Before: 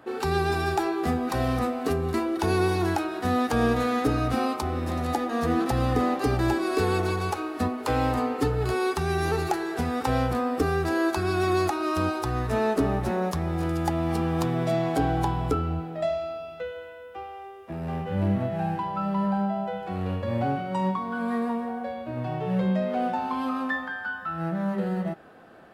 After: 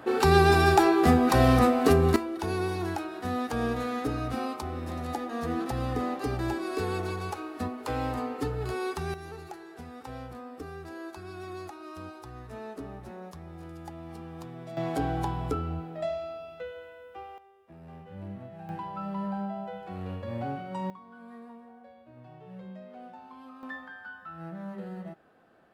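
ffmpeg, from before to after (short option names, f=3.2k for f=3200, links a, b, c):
-af "asetnsamples=n=441:p=0,asendcmd='2.16 volume volume -6.5dB;9.14 volume volume -16.5dB;14.77 volume volume -5dB;17.38 volume volume -16dB;18.69 volume volume -7.5dB;20.9 volume volume -19.5dB;23.63 volume volume -11.5dB',volume=5.5dB"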